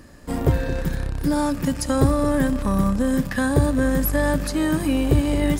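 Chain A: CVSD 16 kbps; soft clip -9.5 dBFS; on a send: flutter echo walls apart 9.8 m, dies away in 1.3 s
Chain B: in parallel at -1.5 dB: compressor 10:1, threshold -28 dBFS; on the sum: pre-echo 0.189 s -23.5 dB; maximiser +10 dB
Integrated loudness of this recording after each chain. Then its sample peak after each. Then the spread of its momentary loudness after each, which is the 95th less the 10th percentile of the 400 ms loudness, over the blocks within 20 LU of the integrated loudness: -19.5, -11.0 LUFS; -5.0, -1.0 dBFS; 6, 4 LU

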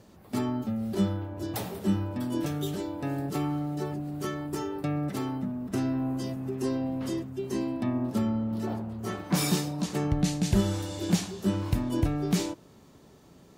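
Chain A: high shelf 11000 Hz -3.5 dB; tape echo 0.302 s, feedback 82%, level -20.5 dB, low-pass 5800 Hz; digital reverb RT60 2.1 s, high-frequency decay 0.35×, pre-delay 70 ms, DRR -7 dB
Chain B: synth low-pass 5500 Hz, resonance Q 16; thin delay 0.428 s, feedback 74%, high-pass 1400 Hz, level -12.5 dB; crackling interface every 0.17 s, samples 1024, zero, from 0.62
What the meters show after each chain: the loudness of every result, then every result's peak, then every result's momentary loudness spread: -22.5, -27.0 LUFS; -6.0, -6.5 dBFS; 6, 11 LU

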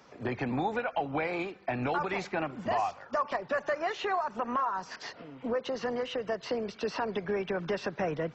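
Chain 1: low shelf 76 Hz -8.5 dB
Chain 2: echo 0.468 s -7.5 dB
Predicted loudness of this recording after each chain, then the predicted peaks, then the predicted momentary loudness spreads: -33.0, -32.0 LUFS; -19.0, -18.0 dBFS; 4, 4 LU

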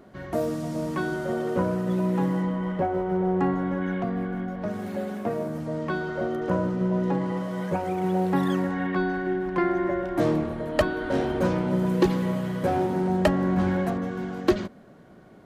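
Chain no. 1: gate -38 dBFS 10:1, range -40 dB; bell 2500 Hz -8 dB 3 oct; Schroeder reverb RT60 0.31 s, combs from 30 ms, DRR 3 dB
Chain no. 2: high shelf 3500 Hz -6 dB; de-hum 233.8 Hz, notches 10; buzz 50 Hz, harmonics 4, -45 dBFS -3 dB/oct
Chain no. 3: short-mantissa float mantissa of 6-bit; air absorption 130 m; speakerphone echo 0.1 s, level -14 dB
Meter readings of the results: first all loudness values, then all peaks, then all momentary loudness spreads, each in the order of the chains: -28.5, -26.5, -26.5 LUFS; -10.0, -10.0, -10.5 dBFS; 7, 8, 7 LU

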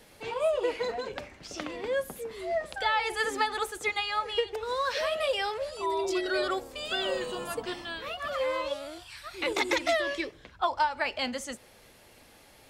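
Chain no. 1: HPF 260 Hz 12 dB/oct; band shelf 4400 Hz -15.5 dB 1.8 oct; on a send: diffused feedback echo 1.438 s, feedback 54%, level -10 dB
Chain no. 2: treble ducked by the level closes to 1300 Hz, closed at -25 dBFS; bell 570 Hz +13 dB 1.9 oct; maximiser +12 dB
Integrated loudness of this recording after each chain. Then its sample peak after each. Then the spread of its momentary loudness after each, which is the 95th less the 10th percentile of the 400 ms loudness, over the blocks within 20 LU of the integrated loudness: -32.0, -11.5 LUFS; -15.5, -1.0 dBFS; 11, 10 LU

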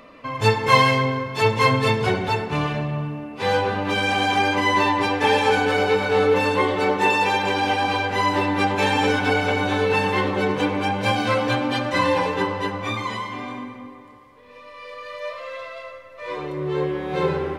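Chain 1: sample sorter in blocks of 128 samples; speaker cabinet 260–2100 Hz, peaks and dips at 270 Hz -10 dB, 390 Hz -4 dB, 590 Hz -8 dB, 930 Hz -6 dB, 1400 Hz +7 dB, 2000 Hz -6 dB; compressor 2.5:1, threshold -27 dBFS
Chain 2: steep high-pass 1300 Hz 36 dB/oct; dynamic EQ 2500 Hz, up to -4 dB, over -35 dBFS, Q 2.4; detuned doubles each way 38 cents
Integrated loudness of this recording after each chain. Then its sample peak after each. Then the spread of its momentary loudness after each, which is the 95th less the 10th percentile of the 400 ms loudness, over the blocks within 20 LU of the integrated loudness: -30.5, -31.0 LUFS; -11.5, -14.0 dBFS; 9, 16 LU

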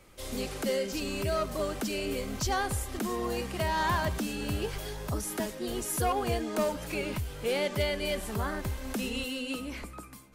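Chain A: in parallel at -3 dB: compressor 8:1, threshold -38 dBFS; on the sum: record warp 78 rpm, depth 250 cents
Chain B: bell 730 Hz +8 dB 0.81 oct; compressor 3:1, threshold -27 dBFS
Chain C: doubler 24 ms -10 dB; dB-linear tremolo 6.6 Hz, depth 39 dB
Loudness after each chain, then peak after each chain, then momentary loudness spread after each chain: -30.5, -32.0, -39.0 LUFS; -16.0, -18.0, -18.5 dBFS; 6, 6, 9 LU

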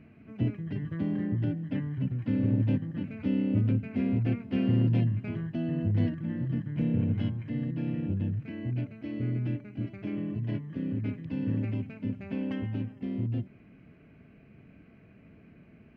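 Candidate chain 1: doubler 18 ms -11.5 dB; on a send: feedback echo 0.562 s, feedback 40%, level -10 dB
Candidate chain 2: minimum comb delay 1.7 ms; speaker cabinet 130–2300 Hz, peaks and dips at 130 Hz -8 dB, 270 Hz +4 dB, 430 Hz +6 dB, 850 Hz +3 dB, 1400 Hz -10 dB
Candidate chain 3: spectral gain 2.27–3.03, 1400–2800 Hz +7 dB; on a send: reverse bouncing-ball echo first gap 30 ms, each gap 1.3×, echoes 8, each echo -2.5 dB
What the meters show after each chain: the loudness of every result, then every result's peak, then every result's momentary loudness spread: -30.0, -35.0, -27.5 LUFS; -14.0, -18.0, -11.5 dBFS; 9, 9, 9 LU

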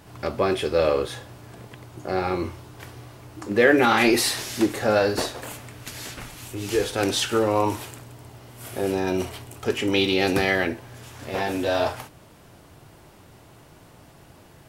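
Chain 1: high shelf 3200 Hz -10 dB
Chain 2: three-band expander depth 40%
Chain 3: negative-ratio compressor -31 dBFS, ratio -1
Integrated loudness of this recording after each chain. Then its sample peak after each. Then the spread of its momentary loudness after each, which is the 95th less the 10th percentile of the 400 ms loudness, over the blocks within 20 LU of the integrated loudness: -24.0, -21.5, -30.5 LUFS; -5.5, -1.0, -12.5 dBFS; 21, 23, 16 LU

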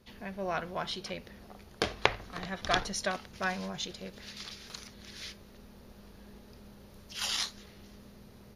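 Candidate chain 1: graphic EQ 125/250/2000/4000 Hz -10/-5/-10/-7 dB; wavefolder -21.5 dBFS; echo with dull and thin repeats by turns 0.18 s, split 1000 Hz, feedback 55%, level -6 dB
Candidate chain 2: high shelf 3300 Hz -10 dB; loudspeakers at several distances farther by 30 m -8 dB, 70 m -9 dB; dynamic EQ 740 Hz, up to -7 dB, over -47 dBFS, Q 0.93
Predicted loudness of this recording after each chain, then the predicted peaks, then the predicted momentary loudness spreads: -40.5, -39.5 LUFS; -21.0, -8.5 dBFS; 21, 19 LU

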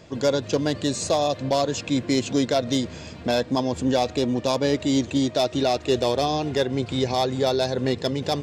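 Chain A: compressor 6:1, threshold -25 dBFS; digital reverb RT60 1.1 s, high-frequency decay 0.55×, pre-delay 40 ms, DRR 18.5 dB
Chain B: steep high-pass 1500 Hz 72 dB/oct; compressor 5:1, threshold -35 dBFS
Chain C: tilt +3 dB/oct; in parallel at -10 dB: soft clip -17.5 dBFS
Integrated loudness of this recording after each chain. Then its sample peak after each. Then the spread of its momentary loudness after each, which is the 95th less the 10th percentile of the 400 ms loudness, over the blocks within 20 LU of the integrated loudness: -29.5, -38.0, -22.0 LUFS; -14.5, -20.5, -5.5 dBFS; 2, 2, 4 LU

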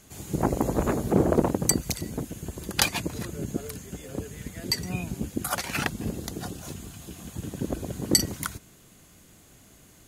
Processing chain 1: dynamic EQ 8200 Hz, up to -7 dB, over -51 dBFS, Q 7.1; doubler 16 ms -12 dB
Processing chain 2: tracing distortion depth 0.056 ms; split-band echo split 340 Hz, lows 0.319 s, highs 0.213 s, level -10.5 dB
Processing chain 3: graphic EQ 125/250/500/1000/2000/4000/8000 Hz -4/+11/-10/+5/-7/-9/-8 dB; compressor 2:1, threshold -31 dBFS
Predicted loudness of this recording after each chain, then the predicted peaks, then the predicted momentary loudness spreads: -28.5, -28.5, -34.0 LUFS; -3.0, -3.0, -13.5 dBFS; 14, 15, 10 LU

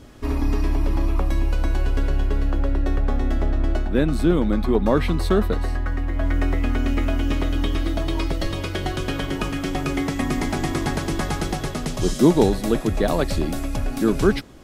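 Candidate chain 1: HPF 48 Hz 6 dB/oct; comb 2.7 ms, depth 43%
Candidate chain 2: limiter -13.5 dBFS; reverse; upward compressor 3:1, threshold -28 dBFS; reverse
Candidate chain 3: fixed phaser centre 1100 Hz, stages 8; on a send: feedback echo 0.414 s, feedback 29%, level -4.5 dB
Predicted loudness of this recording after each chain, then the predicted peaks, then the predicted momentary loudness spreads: -23.0, -25.0, -24.5 LUFS; -3.5, -13.5, -6.0 dBFS; 7, 3, 7 LU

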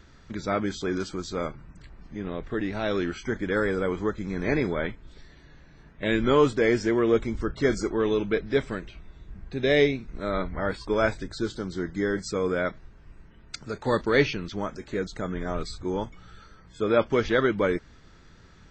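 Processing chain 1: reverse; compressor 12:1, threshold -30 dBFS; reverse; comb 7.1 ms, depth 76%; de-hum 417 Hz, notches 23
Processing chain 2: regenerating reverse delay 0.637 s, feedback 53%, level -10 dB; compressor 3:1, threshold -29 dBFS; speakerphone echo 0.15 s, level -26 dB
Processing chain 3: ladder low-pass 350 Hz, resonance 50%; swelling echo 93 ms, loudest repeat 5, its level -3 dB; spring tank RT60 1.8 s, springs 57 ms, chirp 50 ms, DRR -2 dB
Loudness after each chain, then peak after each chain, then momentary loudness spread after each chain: -34.0, -33.0, -24.5 LUFS; -17.5, -16.0, -8.0 dBFS; 19, 7, 11 LU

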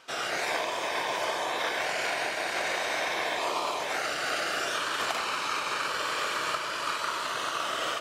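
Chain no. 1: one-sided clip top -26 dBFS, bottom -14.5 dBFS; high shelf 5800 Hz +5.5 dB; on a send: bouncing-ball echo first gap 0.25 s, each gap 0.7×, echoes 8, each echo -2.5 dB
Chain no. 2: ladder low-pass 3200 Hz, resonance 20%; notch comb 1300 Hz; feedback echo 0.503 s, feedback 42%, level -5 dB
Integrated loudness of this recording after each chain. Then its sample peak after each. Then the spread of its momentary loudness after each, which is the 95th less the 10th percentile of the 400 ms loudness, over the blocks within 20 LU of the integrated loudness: -25.5, -35.0 LUFS; -13.0, -21.0 dBFS; 1, 3 LU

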